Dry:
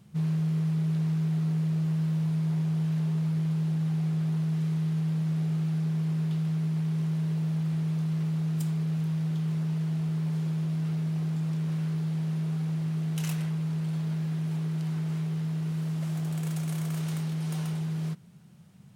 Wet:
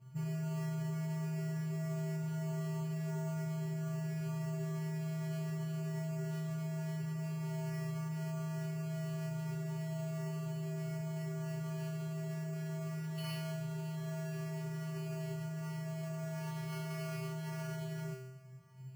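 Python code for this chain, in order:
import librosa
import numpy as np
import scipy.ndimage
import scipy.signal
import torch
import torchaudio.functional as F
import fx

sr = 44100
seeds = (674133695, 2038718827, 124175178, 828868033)

y = scipy.signal.sosfilt(scipy.signal.ellip(4, 1.0, 40, 3100.0, 'lowpass', fs=sr, output='sos'), x)
y = fx.comb_fb(y, sr, f0_hz=130.0, decay_s=0.91, harmonics='odd', damping=0.0, mix_pct=100)
y = np.repeat(scipy.signal.resample_poly(y, 1, 6), 6)[:len(y)]
y = y * 10.0 ** (17.5 / 20.0)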